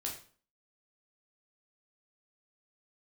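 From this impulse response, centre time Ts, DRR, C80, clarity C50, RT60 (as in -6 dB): 25 ms, -1.5 dB, 11.5 dB, 7.0 dB, 0.45 s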